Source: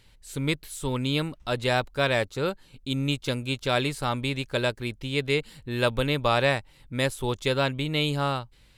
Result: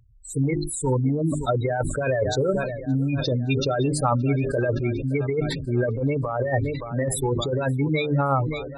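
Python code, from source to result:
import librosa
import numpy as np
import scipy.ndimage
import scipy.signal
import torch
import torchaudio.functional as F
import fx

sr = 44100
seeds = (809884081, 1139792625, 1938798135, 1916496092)

y = fx.notch(x, sr, hz=3000.0, q=6.4)
y = fx.spec_gate(y, sr, threshold_db=-10, keep='strong')
y = fx.echo_feedback(y, sr, ms=569, feedback_pct=59, wet_db=-23)
y = fx.over_compress(y, sr, threshold_db=-28.0, ratio=-0.5)
y = fx.highpass(y, sr, hz=67.0, slope=6)
y = fx.peak_eq(y, sr, hz=220.0, db=-6.5, octaves=0.38)
y = fx.hum_notches(y, sr, base_hz=50, count=8)
y = fx.sustainer(y, sr, db_per_s=45.0)
y = y * librosa.db_to_amplitude(8.0)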